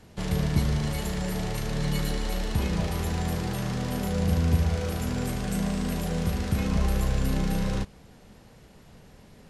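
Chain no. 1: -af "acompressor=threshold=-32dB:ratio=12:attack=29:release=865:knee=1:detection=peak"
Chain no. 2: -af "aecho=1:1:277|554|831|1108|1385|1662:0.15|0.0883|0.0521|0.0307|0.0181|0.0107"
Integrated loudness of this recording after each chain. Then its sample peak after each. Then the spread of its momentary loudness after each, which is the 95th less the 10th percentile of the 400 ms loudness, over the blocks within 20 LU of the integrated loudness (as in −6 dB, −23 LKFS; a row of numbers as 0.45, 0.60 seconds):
−38.0, −28.0 LKFS; −22.0, −11.5 dBFS; 16, 5 LU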